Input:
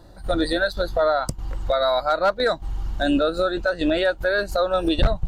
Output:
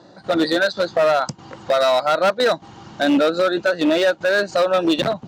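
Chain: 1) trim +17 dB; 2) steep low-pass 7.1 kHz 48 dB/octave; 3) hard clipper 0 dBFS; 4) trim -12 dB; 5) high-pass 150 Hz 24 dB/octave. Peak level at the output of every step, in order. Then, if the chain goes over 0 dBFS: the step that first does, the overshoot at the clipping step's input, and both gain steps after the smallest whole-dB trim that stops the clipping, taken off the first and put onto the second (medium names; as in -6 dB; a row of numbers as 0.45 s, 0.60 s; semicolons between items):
+5.5 dBFS, +6.0 dBFS, 0.0 dBFS, -12.0 dBFS, -6.5 dBFS; step 1, 6.0 dB; step 1 +11 dB, step 4 -6 dB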